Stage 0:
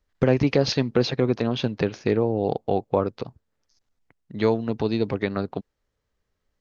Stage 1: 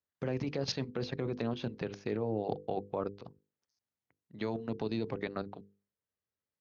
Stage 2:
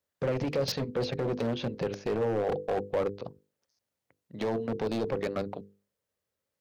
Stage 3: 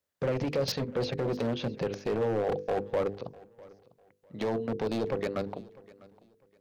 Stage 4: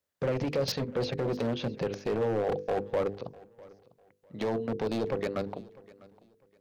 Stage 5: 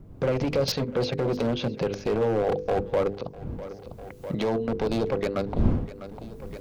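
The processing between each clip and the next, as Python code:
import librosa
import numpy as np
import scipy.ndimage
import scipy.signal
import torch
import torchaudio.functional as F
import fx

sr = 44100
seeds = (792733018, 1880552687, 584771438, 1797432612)

y1 = scipy.signal.sosfilt(scipy.signal.butter(4, 83.0, 'highpass', fs=sr, output='sos'), x)
y1 = fx.level_steps(y1, sr, step_db=13)
y1 = fx.hum_notches(y1, sr, base_hz=50, count=10)
y1 = y1 * librosa.db_to_amplitude(-6.5)
y2 = np.clip(y1, -10.0 ** (-34.0 / 20.0), 10.0 ** (-34.0 / 20.0))
y2 = fx.peak_eq(y2, sr, hz=540.0, db=8.0, octaves=0.48)
y2 = y2 * librosa.db_to_amplitude(6.5)
y3 = fx.echo_feedback(y2, sr, ms=650, feedback_pct=26, wet_db=-22.0)
y4 = y3
y5 = fx.recorder_agc(y4, sr, target_db=-27.0, rise_db_per_s=21.0, max_gain_db=30)
y5 = fx.dmg_wind(y5, sr, seeds[0], corner_hz=160.0, level_db=-39.0)
y5 = fx.notch(y5, sr, hz=1800.0, q=14.0)
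y5 = y5 * librosa.db_to_amplitude(4.5)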